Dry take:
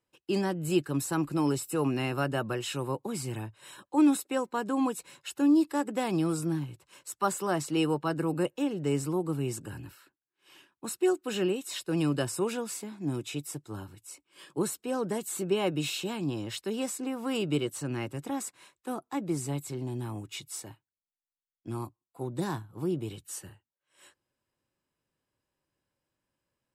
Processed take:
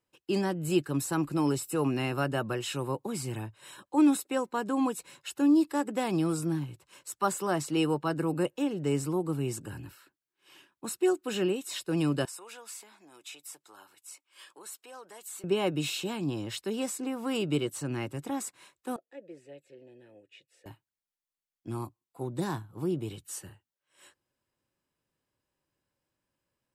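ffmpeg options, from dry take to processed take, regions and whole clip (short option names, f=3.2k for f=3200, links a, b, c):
-filter_complex "[0:a]asettb=1/sr,asplit=3[a][b][c];[a]atrim=end=12.254[d];[b]atrim=start=12.25:end=15.44,asetpts=PTS-STARTPTS,afade=t=in:d=0.004:c=qsin,afade=t=out:st=3.186:d=0.004:c=qsin,acompressor=threshold=-41dB:ratio=2.5:attack=3.2:release=140:knee=1:detection=peak,highpass=750[e];[c]atrim=start=15.436[f];[d][e]acrossfade=d=0.004:c1=hsin:c2=qsin[g];[g][f]acrossfade=d=0.004:c1=qsin:c2=hsin,asettb=1/sr,asplit=3[h][i][j];[h]atrim=end=18.964[k];[i]atrim=start=18.96:end=20.66,asetpts=PTS-STARTPTS,afade=t=in:d=0.004:c=qsin,afade=t=out:st=1.696:d=0.004:c=qsin,asplit=3[l][m][n];[l]bandpass=f=530:t=q:w=8,volume=0dB[o];[m]bandpass=f=1.84k:t=q:w=8,volume=-6dB[p];[n]bandpass=f=2.48k:t=q:w=8,volume=-9dB[q];[o][p][q]amix=inputs=3:normalize=0,bandreject=f=790:w=14[r];[j]atrim=start=20.656[s];[k][r]acrossfade=d=0.004:c1=hsin:c2=qsin[t];[t][s]acrossfade=d=0.004:c1=qsin:c2=hsin"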